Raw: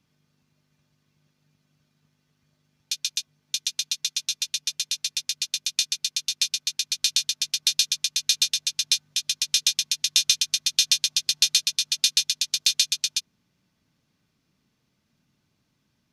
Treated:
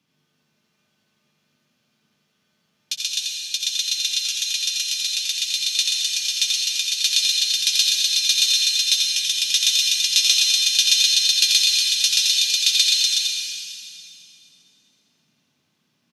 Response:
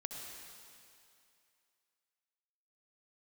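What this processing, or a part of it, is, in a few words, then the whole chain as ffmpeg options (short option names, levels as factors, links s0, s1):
PA in a hall: -filter_complex "[0:a]highpass=170,equalizer=f=3000:t=o:w=0.55:g=4,aecho=1:1:86:0.596[s0];[1:a]atrim=start_sample=2205[s1];[s0][s1]afir=irnorm=-1:irlink=0,volume=1.58"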